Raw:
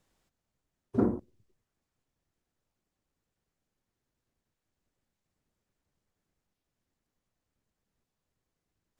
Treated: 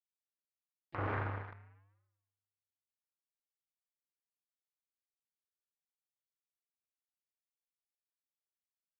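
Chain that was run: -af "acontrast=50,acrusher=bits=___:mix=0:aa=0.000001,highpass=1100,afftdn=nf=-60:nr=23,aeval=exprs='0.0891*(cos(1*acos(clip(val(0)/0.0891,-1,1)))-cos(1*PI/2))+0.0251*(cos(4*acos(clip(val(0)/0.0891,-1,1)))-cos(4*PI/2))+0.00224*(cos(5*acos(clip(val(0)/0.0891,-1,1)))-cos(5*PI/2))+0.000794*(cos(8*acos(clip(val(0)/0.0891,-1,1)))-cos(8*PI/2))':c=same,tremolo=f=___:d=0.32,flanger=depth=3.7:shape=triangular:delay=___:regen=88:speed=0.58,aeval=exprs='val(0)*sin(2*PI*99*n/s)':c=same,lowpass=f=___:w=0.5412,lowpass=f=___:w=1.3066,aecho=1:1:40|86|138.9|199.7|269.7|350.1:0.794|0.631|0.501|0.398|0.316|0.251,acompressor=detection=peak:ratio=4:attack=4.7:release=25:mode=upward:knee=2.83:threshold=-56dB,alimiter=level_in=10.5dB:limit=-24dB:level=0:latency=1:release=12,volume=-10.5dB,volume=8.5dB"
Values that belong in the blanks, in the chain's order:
4, 0.58, 4.2, 1700, 1700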